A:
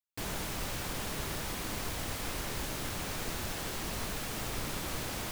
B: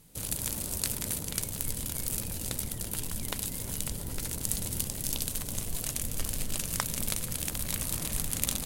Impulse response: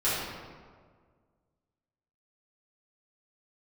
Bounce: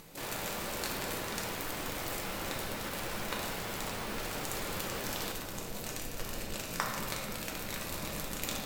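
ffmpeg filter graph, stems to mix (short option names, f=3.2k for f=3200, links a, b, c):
-filter_complex "[0:a]volume=-2dB,asplit=2[a][b];[b]volume=-15dB[c];[1:a]equalizer=f=200:t=o:w=0.33:g=5,equalizer=f=3.15k:t=o:w=0.33:g=-4,equalizer=f=10k:t=o:w=0.33:g=-11,volume=-4.5dB,asplit=2[d][e];[e]volume=-5.5dB[f];[2:a]atrim=start_sample=2205[g];[c][f]amix=inputs=2:normalize=0[h];[h][g]afir=irnorm=-1:irlink=0[i];[a][d][i]amix=inputs=3:normalize=0,bass=f=250:g=-14,treble=f=4k:g=-7,acompressor=mode=upward:threshold=-43dB:ratio=2.5"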